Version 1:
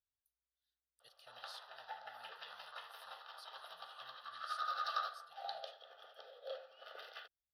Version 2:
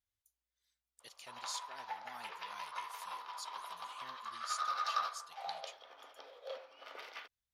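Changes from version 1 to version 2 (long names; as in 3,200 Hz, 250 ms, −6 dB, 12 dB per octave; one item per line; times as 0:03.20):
speech +6.5 dB
master: remove phaser with its sweep stopped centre 1,500 Hz, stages 8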